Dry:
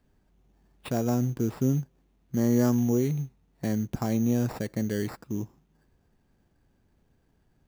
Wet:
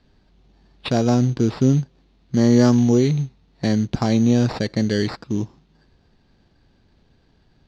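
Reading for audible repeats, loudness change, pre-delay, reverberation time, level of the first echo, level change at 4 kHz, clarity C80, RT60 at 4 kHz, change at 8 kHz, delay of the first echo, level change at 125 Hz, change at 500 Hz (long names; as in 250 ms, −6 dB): no echo audible, +8.5 dB, no reverb audible, no reverb audible, no echo audible, +15.0 dB, no reverb audible, no reverb audible, +6.0 dB, no echo audible, +8.5 dB, +8.5 dB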